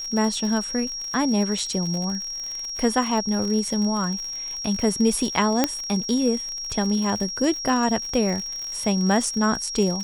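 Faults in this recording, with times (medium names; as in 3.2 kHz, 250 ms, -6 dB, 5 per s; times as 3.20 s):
crackle 65 per s -28 dBFS
whine 5.6 kHz -29 dBFS
5.64 s: pop -4 dBFS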